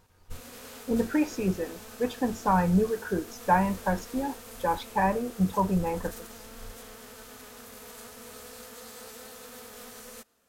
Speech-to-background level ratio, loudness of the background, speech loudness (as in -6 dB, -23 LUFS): 16.5 dB, -44.5 LUFS, -28.0 LUFS